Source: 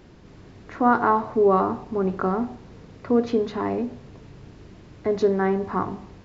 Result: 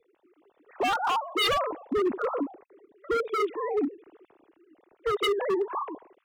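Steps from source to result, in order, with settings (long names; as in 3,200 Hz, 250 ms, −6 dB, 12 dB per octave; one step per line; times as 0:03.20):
three sine waves on the formant tracks
parametric band 1,600 Hz −4.5 dB 0.98 octaves
in parallel at 0 dB: downward compressor 5 to 1, threshold −33 dBFS, peak gain reduction 22 dB
on the sum: wave folding −20.5 dBFS
multiband upward and downward expander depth 40%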